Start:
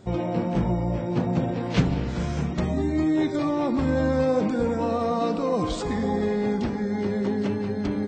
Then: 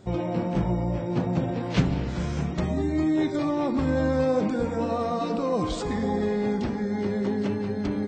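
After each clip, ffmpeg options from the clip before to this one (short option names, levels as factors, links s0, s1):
-af "bandreject=f=232.5:t=h:w=4,bandreject=f=465:t=h:w=4,bandreject=f=697.5:t=h:w=4,bandreject=f=930:t=h:w=4,bandreject=f=1162.5:t=h:w=4,bandreject=f=1395:t=h:w=4,bandreject=f=1627.5:t=h:w=4,bandreject=f=1860:t=h:w=4,bandreject=f=2092.5:t=h:w=4,bandreject=f=2325:t=h:w=4,bandreject=f=2557.5:t=h:w=4,bandreject=f=2790:t=h:w=4,bandreject=f=3022.5:t=h:w=4,bandreject=f=3255:t=h:w=4,volume=0.891"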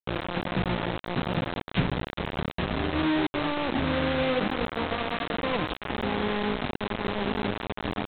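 -af "anlmdn=2.51,aresample=8000,acrusher=bits=3:mix=0:aa=0.000001,aresample=44100,volume=0.631"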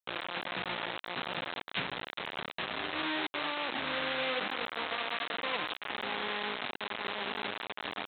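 -af "highpass=f=1500:p=1"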